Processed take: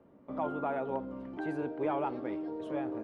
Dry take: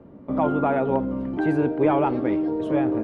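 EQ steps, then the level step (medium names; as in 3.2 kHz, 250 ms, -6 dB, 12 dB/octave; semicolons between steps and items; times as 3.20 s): dynamic bell 2.2 kHz, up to -3 dB, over -39 dBFS, Q 1.1; bass shelf 340 Hz -10 dB; -8.5 dB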